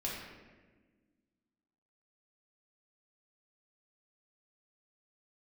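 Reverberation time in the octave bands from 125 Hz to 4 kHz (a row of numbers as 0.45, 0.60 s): 1.8, 2.3, 1.6, 1.1, 1.3, 0.85 s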